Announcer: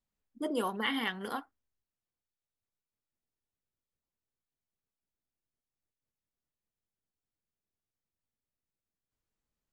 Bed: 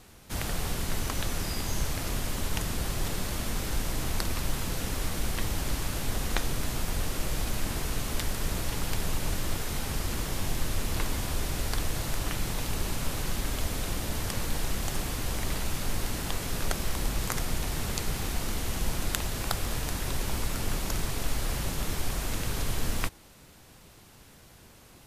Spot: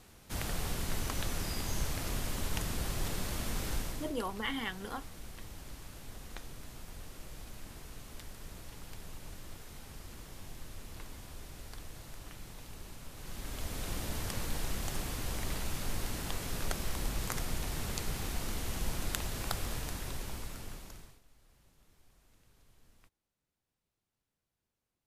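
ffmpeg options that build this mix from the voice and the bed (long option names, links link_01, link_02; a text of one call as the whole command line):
ffmpeg -i stem1.wav -i stem2.wav -filter_complex "[0:a]adelay=3600,volume=-4dB[link_01];[1:a]volume=7dB,afade=type=out:start_time=3.72:duration=0.42:silence=0.237137,afade=type=in:start_time=13.14:duration=0.83:silence=0.266073,afade=type=out:start_time=19.61:duration=1.6:silence=0.0334965[link_02];[link_01][link_02]amix=inputs=2:normalize=0" out.wav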